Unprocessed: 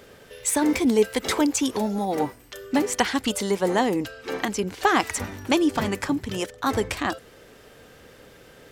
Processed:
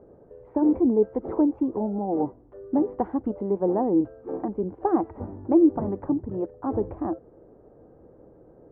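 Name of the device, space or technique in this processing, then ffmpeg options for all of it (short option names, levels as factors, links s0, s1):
under water: -af "lowpass=f=840:w=0.5412,lowpass=f=840:w=1.3066,equalizer=f=330:t=o:w=0.2:g=9,volume=0.794"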